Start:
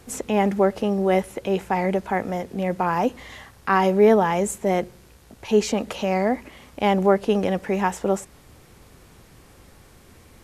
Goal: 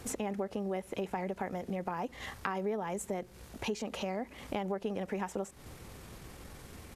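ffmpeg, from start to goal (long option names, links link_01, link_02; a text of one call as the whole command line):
ffmpeg -i in.wav -af "acompressor=threshold=-35dB:ratio=5,atempo=1.5,volume=1dB" out.wav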